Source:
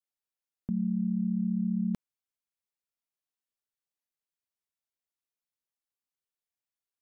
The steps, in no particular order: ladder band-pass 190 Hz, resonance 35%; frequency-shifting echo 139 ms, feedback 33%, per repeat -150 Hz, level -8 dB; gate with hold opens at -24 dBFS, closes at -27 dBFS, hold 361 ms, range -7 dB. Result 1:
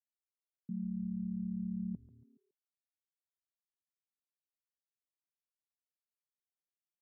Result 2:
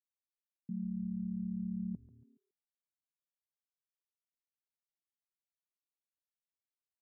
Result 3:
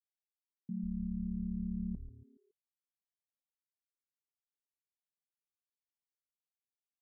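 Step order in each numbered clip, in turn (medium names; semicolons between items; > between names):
gate with hold > frequency-shifting echo > ladder band-pass; frequency-shifting echo > gate with hold > ladder band-pass; gate with hold > ladder band-pass > frequency-shifting echo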